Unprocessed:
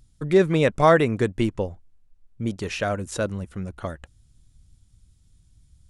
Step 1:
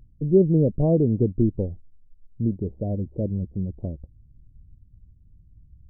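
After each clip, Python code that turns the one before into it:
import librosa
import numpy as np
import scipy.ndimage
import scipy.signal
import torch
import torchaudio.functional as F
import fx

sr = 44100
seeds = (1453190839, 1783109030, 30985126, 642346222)

y = scipy.ndimage.gaussian_filter1d(x, 20.0, mode='constant')
y = y * librosa.db_to_amplitude(5.0)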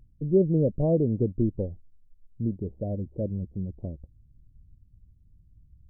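y = fx.dynamic_eq(x, sr, hz=560.0, q=3.9, threshold_db=-37.0, ratio=4.0, max_db=5)
y = y * librosa.db_to_amplitude(-4.5)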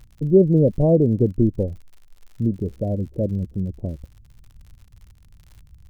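y = fx.dmg_crackle(x, sr, seeds[0], per_s=79.0, level_db=-47.0)
y = y * librosa.db_to_amplitude(7.0)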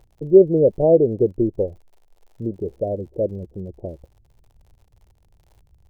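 y = fx.band_shelf(x, sr, hz=560.0, db=12.5, octaves=1.7)
y = y * librosa.db_to_amplitude(-8.0)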